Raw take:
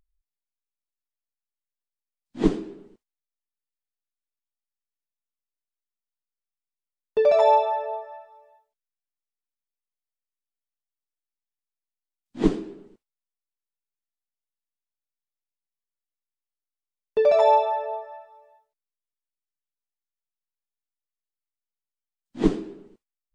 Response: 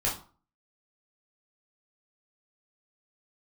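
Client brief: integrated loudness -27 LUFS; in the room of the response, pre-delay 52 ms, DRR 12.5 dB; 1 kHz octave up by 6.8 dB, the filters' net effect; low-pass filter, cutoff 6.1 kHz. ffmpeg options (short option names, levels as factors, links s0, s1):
-filter_complex "[0:a]lowpass=6100,equalizer=f=1000:t=o:g=8,asplit=2[s0][s1];[1:a]atrim=start_sample=2205,adelay=52[s2];[s1][s2]afir=irnorm=-1:irlink=0,volume=0.0944[s3];[s0][s3]amix=inputs=2:normalize=0,volume=0.398"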